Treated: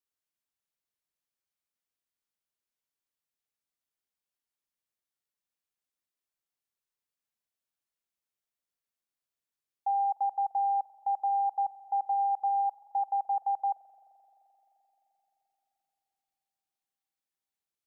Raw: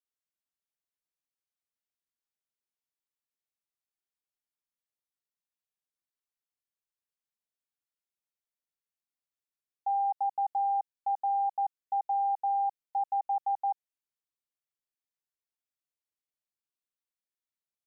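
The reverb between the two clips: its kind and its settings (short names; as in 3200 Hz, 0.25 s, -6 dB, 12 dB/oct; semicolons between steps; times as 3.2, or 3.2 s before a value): spring tank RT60 4 s, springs 43 ms, chirp 75 ms, DRR 15 dB; gain +1 dB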